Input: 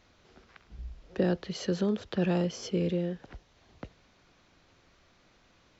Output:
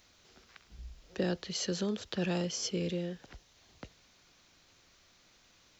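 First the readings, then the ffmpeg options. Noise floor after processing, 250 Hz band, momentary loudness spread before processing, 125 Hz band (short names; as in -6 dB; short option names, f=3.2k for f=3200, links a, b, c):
-65 dBFS, -5.5 dB, 21 LU, -5.5 dB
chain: -af "crystalizer=i=4.5:c=0,volume=-5.5dB"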